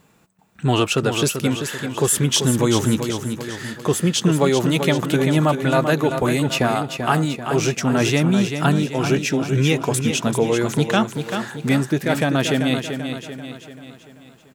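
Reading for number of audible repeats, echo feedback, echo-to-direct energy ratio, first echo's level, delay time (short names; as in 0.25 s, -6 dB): 5, 48%, -6.5 dB, -7.5 dB, 0.388 s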